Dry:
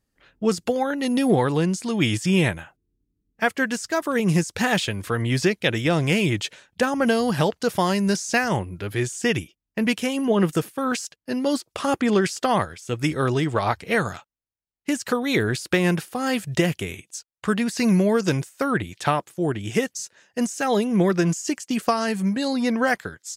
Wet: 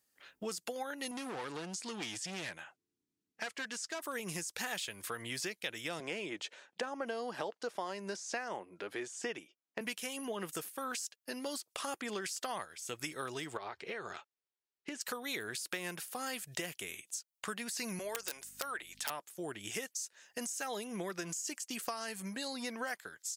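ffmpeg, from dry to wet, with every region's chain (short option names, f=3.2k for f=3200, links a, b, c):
-filter_complex "[0:a]asettb=1/sr,asplit=3[a][b][c];[a]atrim=end=1.114[d];[b]atrim=start=1.11:end=4.01,asetpts=PTS-STARTPTS,afade=t=in:d=0.004:c=qsin,afade=t=out:st=2.896:d=0.004:c=qsin,asoftclip=type=hard:threshold=-21.5dB,highpass=100,lowpass=6.9k[e];[c]atrim=start=4.006[f];[d][e]acrossfade=d=0.004:c1=hsin:c2=qsin[g];[g][f]acrossfade=d=0.004:c1=qsin:c2=hsin,asettb=1/sr,asplit=3[h][i][j];[h]atrim=end=6.004[k];[i]atrim=start=6:end=9.81,asetpts=PTS-STARTPTS,afade=t=in:d=0.004:c=qsin,afade=t=out:st=3.806:d=0.004:c=qsin,highpass=290,lowpass=6.8k,tiltshelf=f=1.5k:g=6.5[l];[j]atrim=start=9.806[m];[k][l]acrossfade=d=0.004:c1=hsin:c2=qsin[n];[n][m]acrossfade=d=0.004:c1=qsin:c2=hsin,asettb=1/sr,asplit=3[o][p][q];[o]atrim=end=13.574[r];[p]atrim=start=13.57:end=15.01,asetpts=PTS-STARTPTS,afade=t=in:d=0.004:c=qsin,afade=t=out:st=1.436:d=0.004:c=qsin,equalizer=f=390:t=o:w=0.35:g=11.5,acompressor=threshold=-24dB:ratio=6:attack=3.2:release=140:knee=1:detection=peak,lowpass=4k[s];[q]atrim=start=15.006[t];[r][s]acrossfade=d=0.004:c1=hsin:c2=qsin[u];[u][t]acrossfade=d=0.004:c1=qsin:c2=hsin,asettb=1/sr,asplit=3[v][w][x];[v]atrim=end=17.994[y];[w]atrim=start=17.99:end=19.1,asetpts=PTS-STARTPTS,afade=t=in:d=0.004:c=qsin,afade=t=out:st=1.106:d=0.004:c=qsin,highpass=500,aeval=exprs='(mod(4.73*val(0)+1,2)-1)/4.73':c=same,aeval=exprs='val(0)+0.00891*(sin(2*PI*50*n/s)+sin(2*PI*2*50*n/s)/2+sin(2*PI*3*50*n/s)/3+sin(2*PI*4*50*n/s)/4+sin(2*PI*5*50*n/s)/5)':c=same[z];[x]atrim=start=19.096[aa];[y][z]acrossfade=d=0.004:c1=hsin:c2=qsin[ab];[ab][aa]acrossfade=d=0.004:c1=qsin:c2=hsin,highpass=f=780:p=1,highshelf=f=7k:g=10.5,acompressor=threshold=-40dB:ratio=3,volume=-1dB"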